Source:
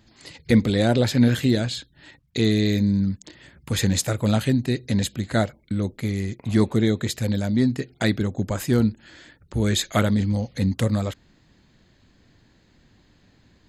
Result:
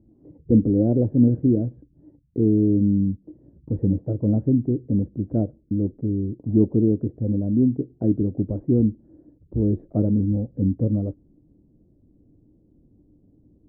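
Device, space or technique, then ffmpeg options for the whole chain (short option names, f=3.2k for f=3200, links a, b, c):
under water: -af "lowpass=f=510:w=0.5412,lowpass=f=510:w=1.3066,equalizer=f=300:t=o:w=0.23:g=9,highshelf=f=3.7k:g=-7"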